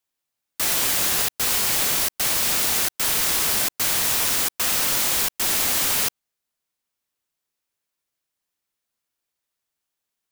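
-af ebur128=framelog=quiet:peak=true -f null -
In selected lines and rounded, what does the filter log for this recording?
Integrated loudness:
  I:         -19.1 LUFS
  Threshold: -29.2 LUFS
Loudness range:
  LRA:         6.5 LU
  Threshold: -40.2 LUFS
  LRA low:   -25.4 LUFS
  LRA high:  -18.9 LUFS
True peak:
  Peak:       -8.4 dBFS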